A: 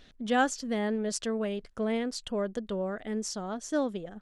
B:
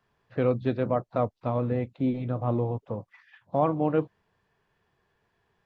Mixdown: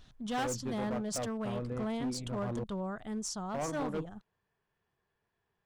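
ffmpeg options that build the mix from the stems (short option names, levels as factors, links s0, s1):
-filter_complex "[0:a]equalizer=f=125:t=o:w=1:g=7,equalizer=f=250:t=o:w=1:g=-5,equalizer=f=500:t=o:w=1:g=-10,equalizer=f=1000:t=o:w=1:g=5,equalizer=f=2000:t=o:w=1:g=-9,equalizer=f=4000:t=o:w=1:g=-3,volume=1[s0];[1:a]volume=0.316,asplit=3[s1][s2][s3];[s1]atrim=end=2.64,asetpts=PTS-STARTPTS,afade=t=out:st=2.636:d=0.004:c=hsin[s4];[s2]atrim=start=2.64:end=3.38,asetpts=PTS-STARTPTS,volume=0[s5];[s3]atrim=start=3.38,asetpts=PTS-STARTPTS,afade=t=in:d=0.004:c=hsin[s6];[s4][s5][s6]concat=n=3:v=0:a=1[s7];[s0][s7]amix=inputs=2:normalize=0,asoftclip=type=hard:threshold=0.0299"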